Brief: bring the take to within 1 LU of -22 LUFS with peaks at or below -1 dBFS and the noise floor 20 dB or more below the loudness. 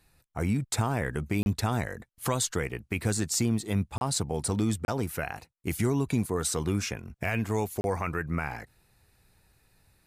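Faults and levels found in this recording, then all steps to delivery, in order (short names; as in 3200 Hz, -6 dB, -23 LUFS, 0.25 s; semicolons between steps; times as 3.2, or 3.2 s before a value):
dropouts 4; longest dropout 31 ms; loudness -30.0 LUFS; peak -15.5 dBFS; loudness target -22.0 LUFS
-> interpolate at 1.43/3.98/4.85/7.81, 31 ms; gain +8 dB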